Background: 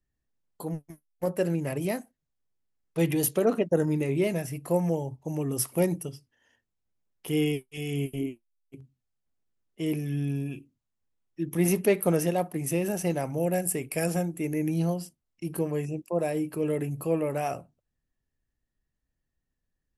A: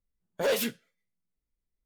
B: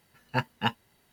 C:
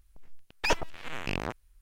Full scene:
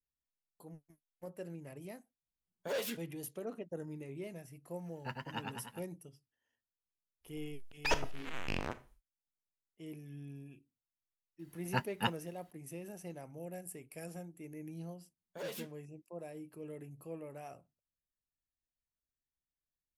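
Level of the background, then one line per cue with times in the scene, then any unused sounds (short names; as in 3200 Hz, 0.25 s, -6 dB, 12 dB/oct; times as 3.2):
background -18.5 dB
2.26 add A -10 dB + HPF 51 Hz
4.71 add B -15 dB + warbling echo 0.1 s, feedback 65%, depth 105 cents, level -3 dB
7.21 add C -5.5 dB, fades 0.10 s + Schroeder reverb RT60 0.35 s, combs from 25 ms, DRR 12.5 dB
11.39 add B -6 dB
14.96 add A -16 dB + HPF 63 Hz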